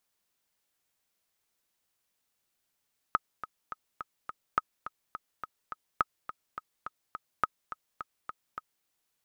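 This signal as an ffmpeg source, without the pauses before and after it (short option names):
-f lavfi -i "aevalsrc='pow(10,(-11-13*gte(mod(t,5*60/210),60/210))/20)*sin(2*PI*1270*mod(t,60/210))*exp(-6.91*mod(t,60/210)/0.03)':d=5.71:s=44100"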